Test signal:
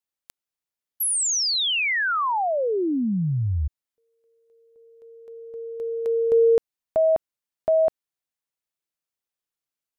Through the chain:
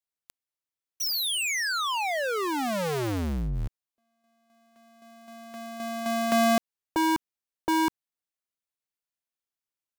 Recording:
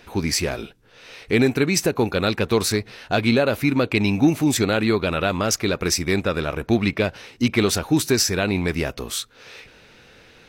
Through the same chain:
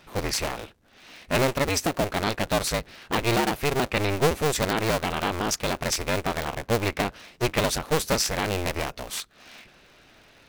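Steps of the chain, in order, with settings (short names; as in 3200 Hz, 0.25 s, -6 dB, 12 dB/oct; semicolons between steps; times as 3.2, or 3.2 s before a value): cycle switcher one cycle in 2, inverted; gain -5 dB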